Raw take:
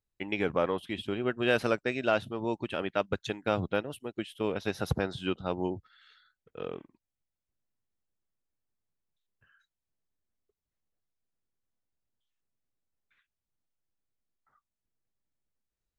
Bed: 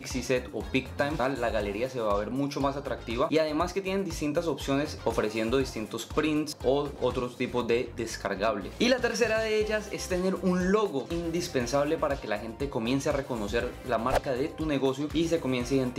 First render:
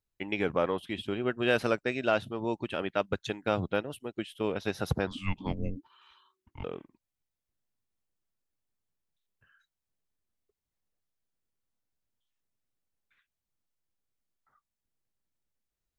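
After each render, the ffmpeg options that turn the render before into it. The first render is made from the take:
-filter_complex "[0:a]asettb=1/sr,asplit=3[a][b][c];[a]atrim=end=5.074[d];[b]atrim=start=5.07:end=6.64,asetpts=PTS-STARTPTS,afade=t=in:d=0.004:c=qsin,afade=t=out:st=1.566:d=0.004:c=qsin,afreqshift=-380[e];[c]atrim=start=6.636[f];[d][e]acrossfade=d=0.004:c1=hsin:c2=qsin[g];[g][f]acrossfade=d=0.004:c1=qsin:c2=hsin"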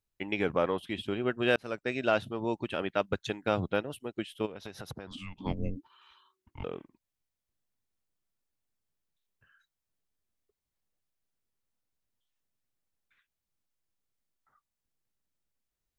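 -filter_complex "[0:a]asplit=3[a][b][c];[a]afade=t=out:st=4.45:d=0.02[d];[b]acompressor=threshold=-38dB:ratio=8:attack=3.2:release=140:knee=1:detection=peak,afade=t=in:st=4.45:d=0.02,afade=t=out:st=5.43:d=0.02[e];[c]afade=t=in:st=5.43:d=0.02[f];[d][e][f]amix=inputs=3:normalize=0,asplit=2[g][h];[g]atrim=end=1.56,asetpts=PTS-STARTPTS,afade=t=out:st=1.556:d=0.004:c=hsin[i];[h]atrim=start=1.56,asetpts=PTS-STARTPTS,afade=t=in:d=0.4[j];[i][j]concat=n=2:v=0:a=1"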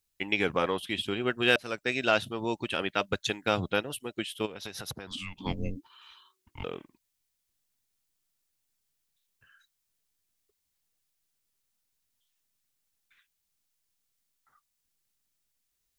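-af "highshelf=f=2.1k:g=11.5,bandreject=f=600:w=17"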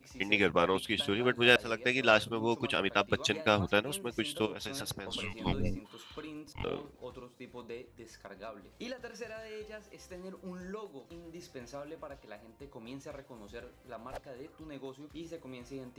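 -filter_complex "[1:a]volume=-18dB[a];[0:a][a]amix=inputs=2:normalize=0"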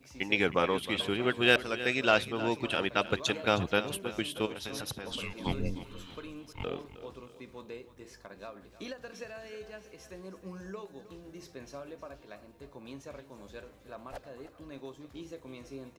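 -af "aecho=1:1:314|628|942|1256:0.188|0.0848|0.0381|0.0172"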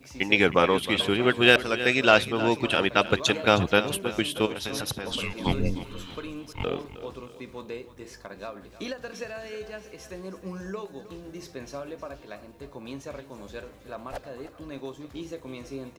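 -af "volume=7dB,alimiter=limit=-2dB:level=0:latency=1"

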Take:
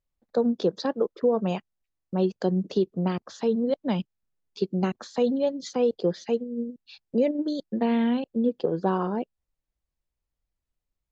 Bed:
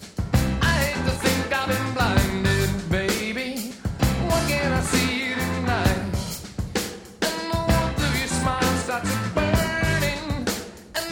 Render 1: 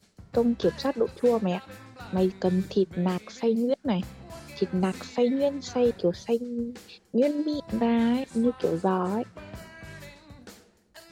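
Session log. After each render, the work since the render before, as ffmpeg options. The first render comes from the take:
-filter_complex "[1:a]volume=-21.5dB[a];[0:a][a]amix=inputs=2:normalize=0"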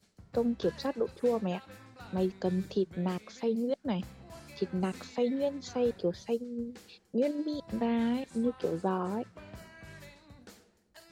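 -af "volume=-6dB"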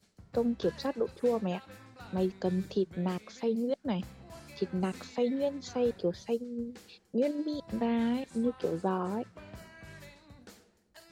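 -af anull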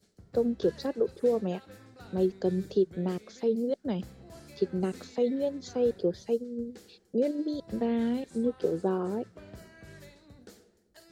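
-af "equalizer=f=400:t=o:w=0.67:g=6,equalizer=f=1k:t=o:w=0.67:g=-6,equalizer=f=2.5k:t=o:w=0.67:g=-5"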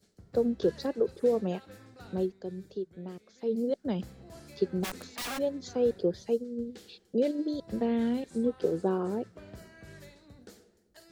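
-filter_complex "[0:a]asplit=3[a][b][c];[a]afade=t=out:st=4.83:d=0.02[d];[b]aeval=exprs='(mod(35.5*val(0)+1,2)-1)/35.5':c=same,afade=t=in:st=4.83:d=0.02,afade=t=out:st=5.37:d=0.02[e];[c]afade=t=in:st=5.37:d=0.02[f];[d][e][f]amix=inputs=3:normalize=0,asettb=1/sr,asplit=3[g][h][i];[g]atrim=end=6.584[j];[h]atrim=start=6.58:end=7.32,asetpts=PTS-STARTPTS,afade=t=in:d=0.004:c=qsin,afade=t=out:st=0.736:d=0.004:c=qsin,equalizer=f=3.3k:w=1.6:g=7[k];[i]atrim=start=7.316[l];[j][k]acrossfade=d=0.004:c1=hsin:c2=qsin[m];[m][l]acrossfade=d=0.004:c1=qsin:c2=hsin,asplit=3[n][o][p];[n]atrim=end=2.34,asetpts=PTS-STARTPTS,afade=t=out:st=2.12:d=0.22:silence=0.298538[q];[o]atrim=start=2.34:end=3.37,asetpts=PTS-STARTPTS,volume=-10.5dB[r];[p]atrim=start=3.37,asetpts=PTS-STARTPTS,afade=t=in:d=0.22:silence=0.298538[s];[q][r][s]concat=n=3:v=0:a=1"

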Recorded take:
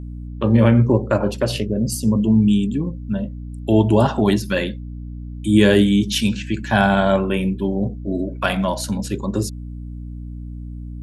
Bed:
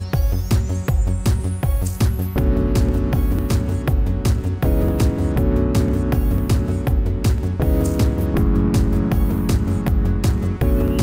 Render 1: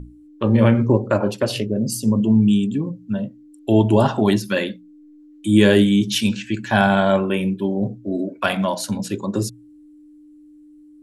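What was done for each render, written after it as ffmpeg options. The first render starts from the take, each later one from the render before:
-af "bandreject=f=60:t=h:w=6,bandreject=f=120:t=h:w=6,bandreject=f=180:t=h:w=6,bandreject=f=240:t=h:w=6"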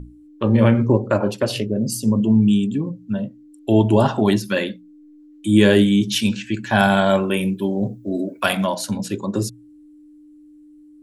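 -filter_complex "[0:a]asettb=1/sr,asplit=3[a][b][c];[a]atrim=end=6.794[d];[b]atrim=start=6.79:end=8.67,asetpts=PTS-STARTPTS,afade=t=in:d=0.004:c=qsin,afade=t=out:st=1.876:d=0.004:c=qsin,aemphasis=mode=production:type=50kf[e];[c]atrim=start=8.666[f];[d][e]acrossfade=d=0.004:c1=hsin:c2=qsin[g];[g][f]acrossfade=d=0.004:c1=qsin:c2=hsin"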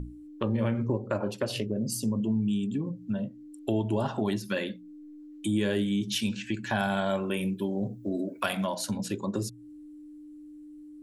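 -af "acompressor=threshold=-31dB:ratio=2.5"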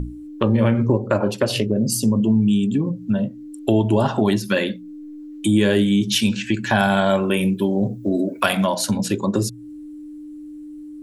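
-af "volume=10.5dB"

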